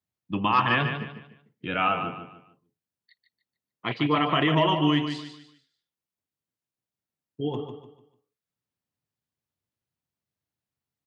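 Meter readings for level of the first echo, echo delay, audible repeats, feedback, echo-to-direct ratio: -8.0 dB, 0.148 s, 3, 33%, -7.5 dB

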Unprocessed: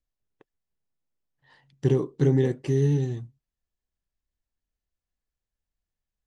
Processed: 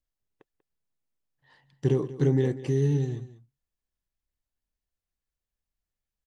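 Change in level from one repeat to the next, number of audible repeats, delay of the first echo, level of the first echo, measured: no steady repeat, 1, 0.191 s, -16.0 dB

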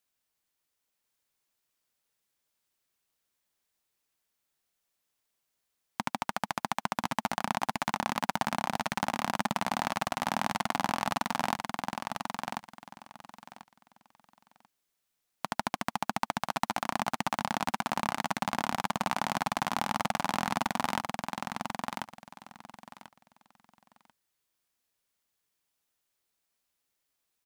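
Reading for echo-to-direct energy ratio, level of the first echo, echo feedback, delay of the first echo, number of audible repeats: -4.5 dB, -4.5 dB, 20%, 1.04 s, 3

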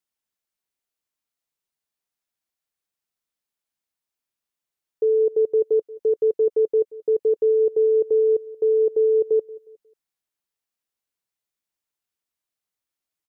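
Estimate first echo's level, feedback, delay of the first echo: -21.0 dB, 37%, 0.18 s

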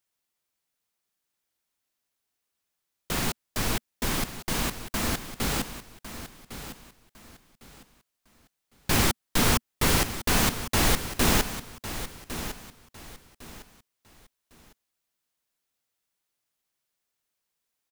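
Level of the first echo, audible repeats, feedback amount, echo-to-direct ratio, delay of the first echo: -12.0 dB, 3, 28%, -11.5 dB, 1.105 s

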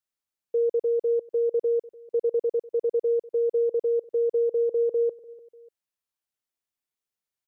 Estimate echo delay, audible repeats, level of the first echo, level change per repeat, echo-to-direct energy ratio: 0.296 s, 2, -19.5 dB, -8.0 dB, -19.0 dB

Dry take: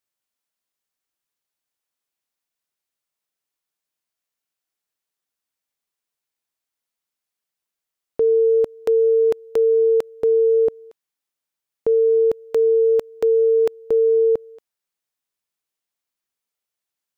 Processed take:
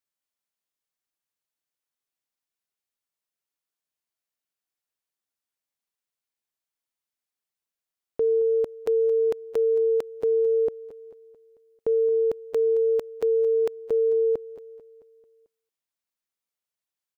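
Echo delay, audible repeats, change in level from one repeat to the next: 0.221 s, 4, -5.5 dB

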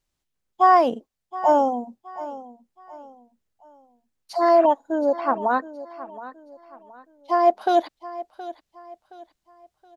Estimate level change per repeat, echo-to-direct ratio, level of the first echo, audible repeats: -9.0 dB, -15.5 dB, -16.0 dB, 3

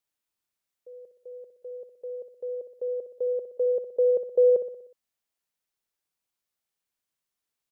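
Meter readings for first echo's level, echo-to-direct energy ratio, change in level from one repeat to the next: -10.5 dB, -9.0 dB, -5.5 dB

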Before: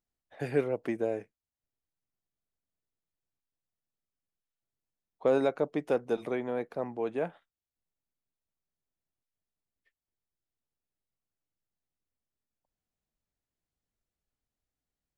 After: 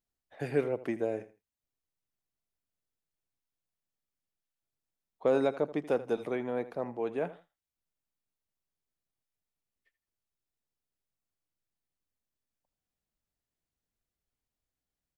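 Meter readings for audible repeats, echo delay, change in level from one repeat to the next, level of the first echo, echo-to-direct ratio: 2, 81 ms, -12.5 dB, -16.0 dB, -16.0 dB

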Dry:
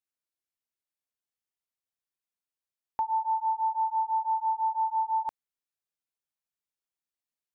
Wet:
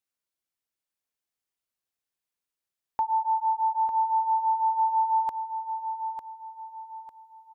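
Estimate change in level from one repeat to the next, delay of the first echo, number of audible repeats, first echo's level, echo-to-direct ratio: -9.0 dB, 0.9 s, 4, -8.0 dB, -7.5 dB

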